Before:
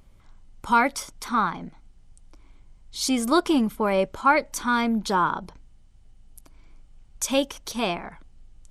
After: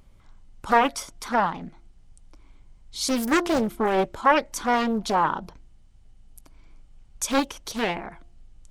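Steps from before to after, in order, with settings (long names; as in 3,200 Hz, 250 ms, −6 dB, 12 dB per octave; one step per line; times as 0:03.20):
hum removal 346.8 Hz, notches 2
highs frequency-modulated by the lows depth 0.9 ms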